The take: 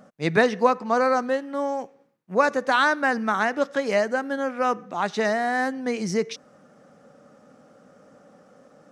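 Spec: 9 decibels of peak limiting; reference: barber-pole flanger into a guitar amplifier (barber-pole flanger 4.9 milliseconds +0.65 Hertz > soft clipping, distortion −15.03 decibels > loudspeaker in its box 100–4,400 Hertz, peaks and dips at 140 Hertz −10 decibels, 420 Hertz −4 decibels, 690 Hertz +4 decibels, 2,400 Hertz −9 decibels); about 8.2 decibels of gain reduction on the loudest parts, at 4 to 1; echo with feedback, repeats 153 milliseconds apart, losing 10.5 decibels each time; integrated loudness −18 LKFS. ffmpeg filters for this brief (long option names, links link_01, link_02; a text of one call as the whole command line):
ffmpeg -i in.wav -filter_complex "[0:a]acompressor=threshold=-23dB:ratio=4,alimiter=limit=-20.5dB:level=0:latency=1,aecho=1:1:153|306|459:0.299|0.0896|0.0269,asplit=2[link_01][link_02];[link_02]adelay=4.9,afreqshift=0.65[link_03];[link_01][link_03]amix=inputs=2:normalize=1,asoftclip=threshold=-28dB,highpass=100,equalizer=frequency=140:width_type=q:width=4:gain=-10,equalizer=frequency=420:width_type=q:width=4:gain=-4,equalizer=frequency=690:width_type=q:width=4:gain=4,equalizer=frequency=2400:width_type=q:width=4:gain=-9,lowpass=frequency=4400:width=0.5412,lowpass=frequency=4400:width=1.3066,volume=17.5dB" out.wav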